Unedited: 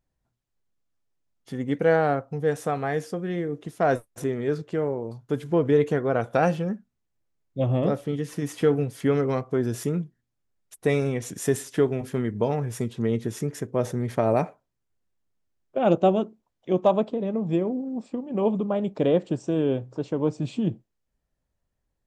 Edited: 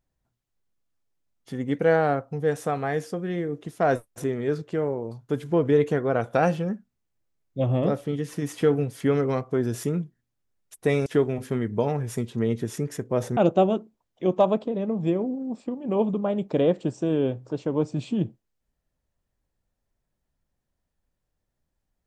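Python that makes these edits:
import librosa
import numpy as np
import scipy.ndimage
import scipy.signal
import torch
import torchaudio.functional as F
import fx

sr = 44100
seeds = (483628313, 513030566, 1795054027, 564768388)

y = fx.edit(x, sr, fx.cut(start_s=11.06, length_s=0.63),
    fx.cut(start_s=14.0, length_s=1.83), tone=tone)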